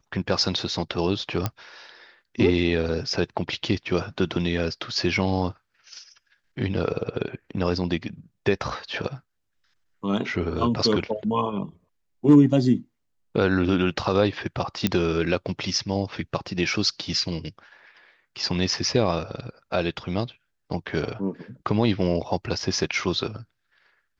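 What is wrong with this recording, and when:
1.46 s: pop -10 dBFS
14.87 s: pop -7 dBFS

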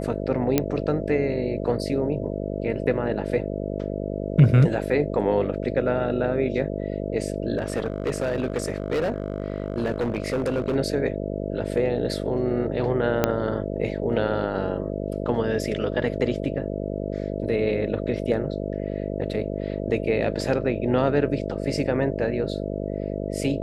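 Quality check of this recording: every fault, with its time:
buzz 50 Hz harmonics 13 -29 dBFS
0.58 s: pop -5 dBFS
7.57–10.76 s: clipped -20 dBFS
13.24 s: pop -5 dBFS

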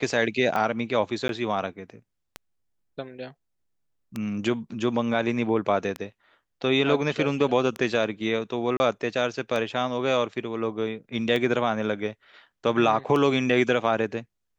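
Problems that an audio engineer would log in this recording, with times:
tick 33 1/3 rpm -16 dBFS
1.28–1.29 s: dropout 12 ms
8.77–8.80 s: dropout 30 ms

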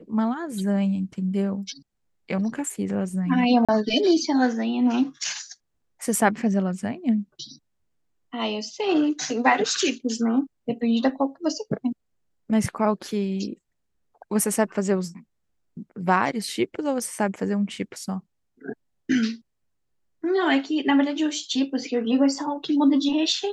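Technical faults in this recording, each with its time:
3.65–3.69 s: dropout 36 ms

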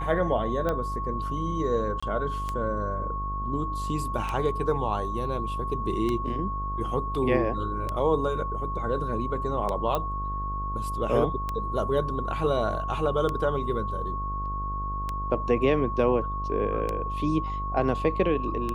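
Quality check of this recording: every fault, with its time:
buzz 50 Hz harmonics 26 -33 dBFS
tick 33 1/3 rpm -16 dBFS
whine 1.1 kHz -31 dBFS
2.00–2.02 s: dropout 25 ms
9.95 s: pop -14 dBFS

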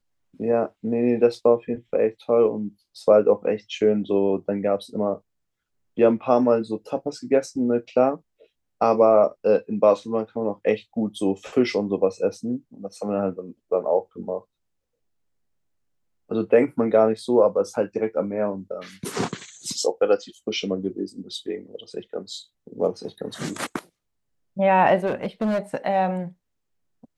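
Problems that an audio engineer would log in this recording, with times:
25.06–25.59 s: clipped -19.5 dBFS

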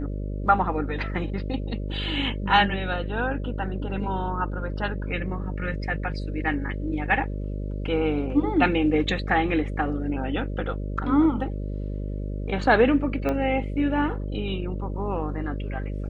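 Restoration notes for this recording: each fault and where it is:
buzz 50 Hz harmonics 12 -30 dBFS
13.29 s: pop -15 dBFS

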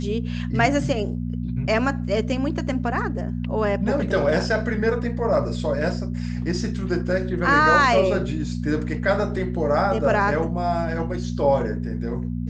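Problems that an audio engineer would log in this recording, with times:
hum 60 Hz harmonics 4 -27 dBFS

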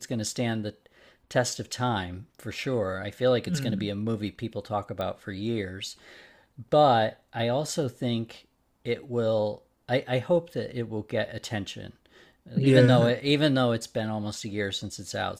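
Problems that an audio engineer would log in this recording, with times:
5.01 s: pop -20 dBFS

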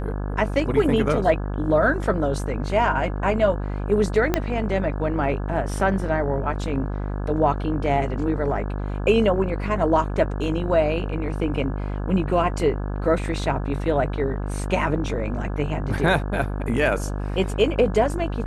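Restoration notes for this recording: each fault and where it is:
buzz 50 Hz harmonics 34 -27 dBFS
4.34 s: pop -6 dBFS

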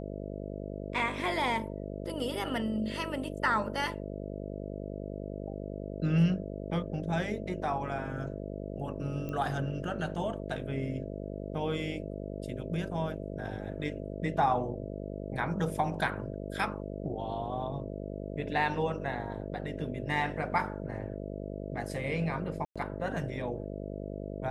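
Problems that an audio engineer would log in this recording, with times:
buzz 50 Hz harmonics 13 -39 dBFS
9.29 s: pop -26 dBFS
22.65–22.76 s: dropout 106 ms

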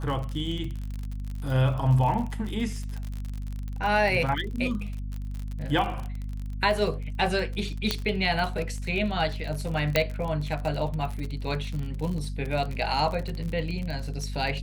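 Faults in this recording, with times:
crackle 46 per s -31 dBFS
hum 50 Hz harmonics 5 -33 dBFS
7.91 s: pop -9 dBFS
9.96 s: pop -6 dBFS

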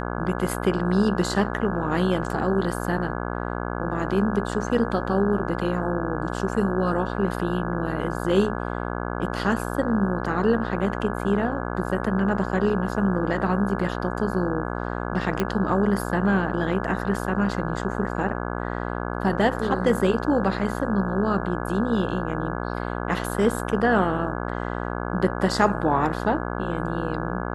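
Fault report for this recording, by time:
buzz 60 Hz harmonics 28 -29 dBFS
15.40 s: pop -10 dBFS

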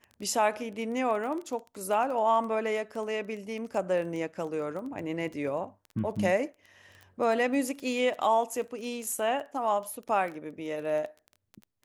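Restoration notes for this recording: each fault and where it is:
crackle 14 per s -35 dBFS

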